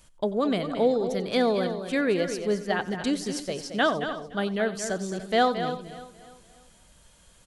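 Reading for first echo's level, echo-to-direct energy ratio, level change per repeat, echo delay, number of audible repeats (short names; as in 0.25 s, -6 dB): -17.5 dB, -8.0 dB, no steady repeat, 91 ms, 8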